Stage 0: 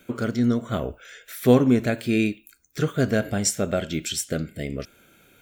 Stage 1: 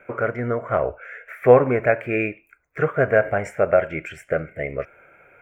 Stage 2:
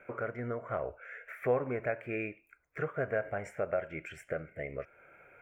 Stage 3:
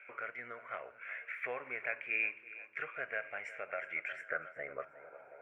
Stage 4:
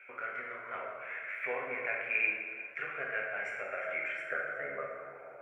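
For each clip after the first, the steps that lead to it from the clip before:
EQ curve 150 Hz 0 dB, 230 Hz -9 dB, 550 Hz +12 dB, 1200 Hz +10 dB, 2300 Hz +10 dB, 3800 Hz -28 dB, 7200 Hz -20 dB; gain -2 dB
compressor 1.5:1, threshold -39 dBFS, peak gain reduction 11.5 dB; gain -6 dB
split-band echo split 320 Hz, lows 0.24 s, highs 0.361 s, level -16 dB; band-pass sweep 2500 Hz -> 710 Hz, 3.63–5.41; gain +8 dB
plate-style reverb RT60 1.7 s, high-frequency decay 0.55×, DRR -2 dB

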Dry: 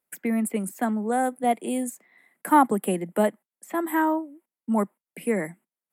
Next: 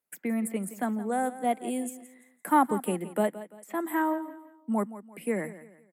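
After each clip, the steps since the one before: feedback echo 0.17 s, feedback 35%, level -15 dB; gain -4.5 dB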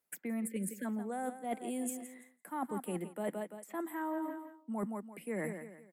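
spectral delete 0.47–0.85, 590–1500 Hz; reverse; compressor 16:1, threshold -36 dBFS, peak gain reduction 20.5 dB; reverse; gain +2 dB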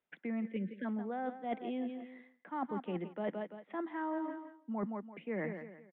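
downsampling 8000 Hz; speakerphone echo 0.16 s, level -24 dB

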